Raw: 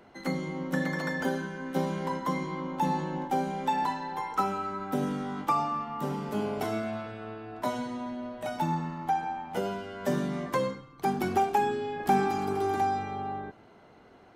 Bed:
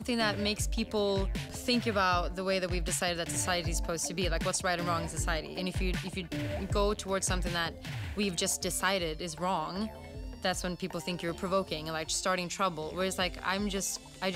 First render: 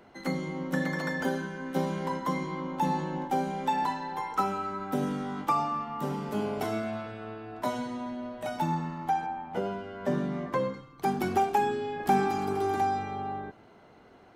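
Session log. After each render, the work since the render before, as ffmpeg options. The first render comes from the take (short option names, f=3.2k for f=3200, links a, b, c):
-filter_complex "[0:a]asettb=1/sr,asplit=3[a][b][c];[a]atrim=end=9.264[d];[b]atrim=start=9.26:end=10.74,asetpts=PTS-STARTPTS,afade=t=in:d=0.004:c=qsin,afade=t=out:st=1.476:d=0.004:c=qsin,lowpass=f=2k:p=1[e];[c]atrim=start=10.736[f];[d][e]acrossfade=d=0.004:c1=hsin:c2=qsin[g];[g][f]acrossfade=d=0.004:c1=qsin:c2=hsin"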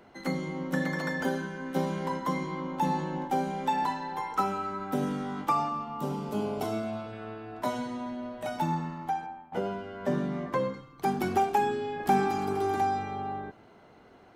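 -filter_complex "[0:a]asettb=1/sr,asplit=3[a][b][c];[a]atrim=end=5.694[d];[b]atrim=start=5.69:end=7.13,asetpts=PTS-STARTPTS,afade=t=in:d=0.004:c=qsin,afade=t=out:st=1.436:d=0.004:c=qsin,equalizer=f=1.8k:w=2.4:g=-9.5[e];[c]atrim=start=7.126[f];[d][e]acrossfade=d=0.004:c1=hsin:c2=qsin[g];[g][f]acrossfade=d=0.004:c1=qsin:c2=hsin,asplit=2[h][i];[h]atrim=end=9.52,asetpts=PTS-STARTPTS,afade=t=out:st=8.6:d=0.92:c=qsin:silence=0.188365[j];[i]atrim=start=9.52,asetpts=PTS-STARTPTS,afade=t=in:d=0.004:c=hsin:silence=0.188365[k];[j][k]concat=n=2:v=0:a=1"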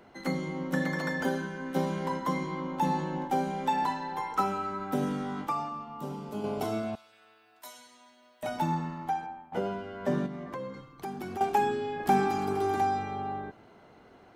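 -filter_complex "[0:a]asettb=1/sr,asplit=3[a][b][c];[a]atrim=end=6.954[d];[b]atrim=start=6.95:end=8.43,asetpts=PTS-STARTPTS,afade=t=in:d=0.004:c=qsin,afade=t=out:st=1.476:d=0.004:c=qsin,aderivative[e];[c]atrim=start=8.426[f];[d][e]acrossfade=d=0.004:c1=hsin:c2=qsin[g];[g][f]acrossfade=d=0.004:c1=qsin:c2=hsin,asettb=1/sr,asplit=3[h][i][j];[h]atrim=end=10.264[k];[i]atrim=start=10.26:end=11.41,asetpts=PTS-STARTPTS,afade=t=in:d=0.004:c=qsin,afade=t=out:st=1.146:d=0.004:c=qsin,acompressor=threshold=-38dB:ratio=2.5:attack=3.2:release=140:knee=1:detection=peak[l];[j]atrim=start=11.406[m];[k][l]acrossfade=d=0.004:c1=hsin:c2=qsin[n];[n][m]acrossfade=d=0.004:c1=qsin:c2=hsin,asplit=3[o][p][q];[o]atrim=end=5.472[r];[p]atrim=start=5.468:end=6.442,asetpts=PTS-STARTPTS,volume=-5dB[s];[q]atrim=start=6.438[t];[r][s]acrossfade=d=0.004:c1=hsin:c2=hsin[u];[u][t]acrossfade=d=0.004:c1=hsin:c2=hsin"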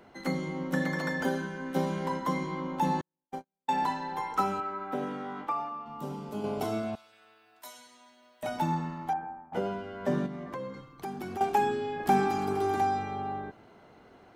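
-filter_complex "[0:a]asettb=1/sr,asplit=3[a][b][c];[a]atrim=end=3.014[d];[b]atrim=start=3.01:end=3.69,asetpts=PTS-STARTPTS,afade=t=in:d=0.004:c=qsin,afade=t=out:st=0.676:d=0.004:c=qsin,agate=range=-58dB:threshold=-25dB:ratio=16:release=100:detection=peak[e];[c]atrim=start=3.686[f];[d][e]acrossfade=d=0.004:c1=hsin:c2=qsin[g];[g][f]acrossfade=d=0.004:c1=qsin:c2=hsin,asettb=1/sr,asplit=3[h][i][j];[h]atrim=end=4.604[k];[i]atrim=start=4.6:end=5.86,asetpts=PTS-STARTPTS,afade=t=in:d=0.004:c=qsin,afade=t=out:st=1.256:d=0.004:c=qsin,bass=f=250:g=-12,treble=f=4k:g=-14[l];[j]atrim=start=5.856[m];[k][l]acrossfade=d=0.004:c1=hsin:c2=qsin[n];[n][m]acrossfade=d=0.004:c1=qsin:c2=hsin,asettb=1/sr,asplit=3[o][p][q];[o]atrim=end=9.134[r];[p]atrim=start=9.13:end=9.53,asetpts=PTS-STARTPTS,afade=t=in:d=0.004:c=qsin,afade=t=out:st=0.396:d=0.004:c=qsin,lowpass=f=1.8k:w=0.5412,lowpass=f=1.8k:w=1.3066[s];[q]atrim=start=9.526[t];[r][s]acrossfade=d=0.004:c1=hsin:c2=qsin[u];[u][t]acrossfade=d=0.004:c1=qsin:c2=hsin"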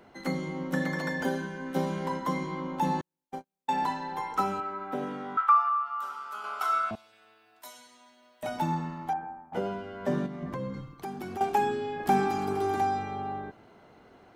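-filter_complex "[0:a]asettb=1/sr,asplit=3[a][b][c];[a]atrim=end=1.004[d];[b]atrim=start=1:end=1.67,asetpts=PTS-STARTPTS,afade=t=in:d=0.004:c=qsin,afade=t=out:st=0.666:d=0.004:c=qsin,bandreject=f=1.3k:w=12[e];[c]atrim=start=1.666[f];[d][e]acrossfade=d=0.004:c1=hsin:c2=qsin[g];[g][f]acrossfade=d=0.004:c1=qsin:c2=hsin,asettb=1/sr,asplit=3[h][i][j];[h]atrim=end=5.374[k];[i]atrim=start=5.37:end=6.91,asetpts=PTS-STARTPTS,afade=t=in:d=0.004:c=qsin,afade=t=out:st=1.536:d=0.004:c=qsin,highpass=f=1.3k:t=q:w=15[l];[j]atrim=start=6.906[m];[k][l]acrossfade=d=0.004:c1=hsin:c2=qsin[n];[n][m]acrossfade=d=0.004:c1=qsin:c2=hsin,asettb=1/sr,asplit=3[o][p][q];[o]atrim=end=10.424[r];[p]atrim=start=10.42:end=10.94,asetpts=PTS-STARTPTS,afade=t=in:d=0.004:c=qsin,afade=t=out:st=0.516:d=0.004:c=qsin,bass=f=250:g=11,treble=f=4k:g=1[s];[q]atrim=start=10.936[t];[r][s]acrossfade=d=0.004:c1=hsin:c2=qsin[u];[u][t]acrossfade=d=0.004:c1=qsin:c2=hsin"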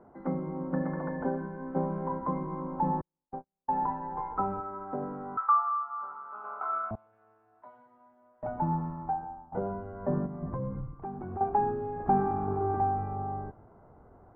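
-af "lowpass=f=1.2k:w=0.5412,lowpass=f=1.2k:w=1.3066,asubboost=boost=4:cutoff=110"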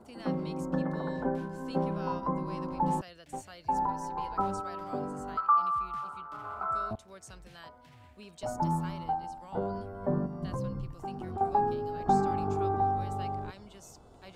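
-filter_complex "[1:a]volume=-19dB[a];[0:a][a]amix=inputs=2:normalize=0"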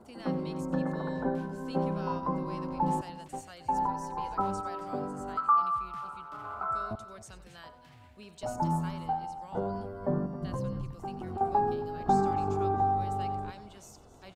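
-af "aecho=1:1:92|271:0.158|0.158"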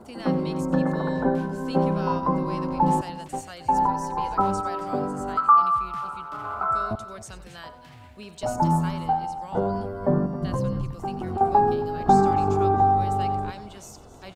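-af "volume=8dB"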